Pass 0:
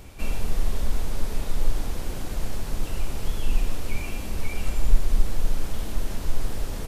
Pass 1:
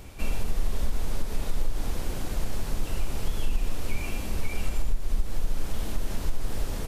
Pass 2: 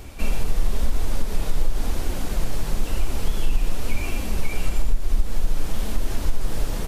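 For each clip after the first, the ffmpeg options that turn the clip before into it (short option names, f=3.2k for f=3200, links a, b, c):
-af "acompressor=threshold=-17dB:ratio=12"
-af "flanger=delay=2.5:depth=4.6:regen=-48:speed=0.98:shape=triangular,volume=8.5dB"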